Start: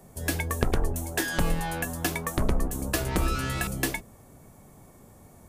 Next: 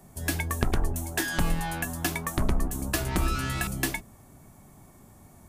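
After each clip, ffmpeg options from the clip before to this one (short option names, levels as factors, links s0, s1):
-af "equalizer=f=490:t=o:w=0.39:g=-9"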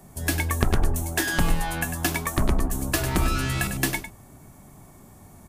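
-af "aecho=1:1:99:0.335,volume=1.5"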